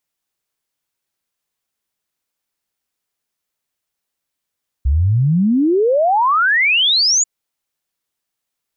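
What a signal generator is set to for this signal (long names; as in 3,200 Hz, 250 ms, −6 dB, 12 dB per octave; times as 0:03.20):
exponential sine sweep 63 Hz → 7,100 Hz 2.39 s −11 dBFS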